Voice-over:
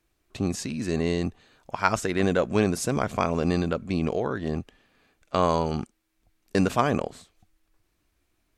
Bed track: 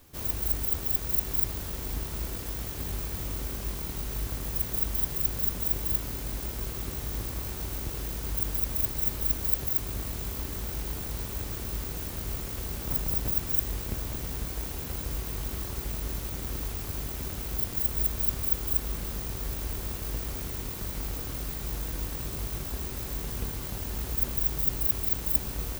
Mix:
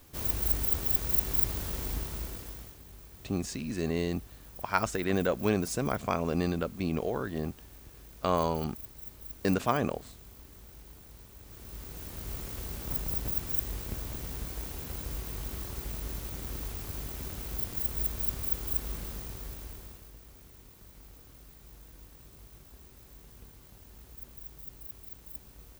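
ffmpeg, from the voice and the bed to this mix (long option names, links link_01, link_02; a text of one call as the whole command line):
ffmpeg -i stem1.wav -i stem2.wav -filter_complex "[0:a]adelay=2900,volume=-5dB[link_01];[1:a]volume=13dB,afade=type=out:start_time=1.8:duration=1:silence=0.141254,afade=type=in:start_time=11.41:duration=1.02:silence=0.223872,afade=type=out:start_time=18.94:duration=1.18:silence=0.188365[link_02];[link_01][link_02]amix=inputs=2:normalize=0" out.wav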